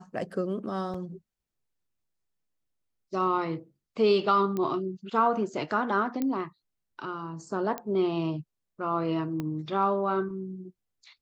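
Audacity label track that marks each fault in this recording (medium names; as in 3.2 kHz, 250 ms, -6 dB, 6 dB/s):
0.940000	0.940000	dropout 4.6 ms
4.570000	4.570000	pop -19 dBFS
6.220000	6.220000	pop -17 dBFS
7.780000	7.780000	pop -18 dBFS
9.400000	9.400000	pop -20 dBFS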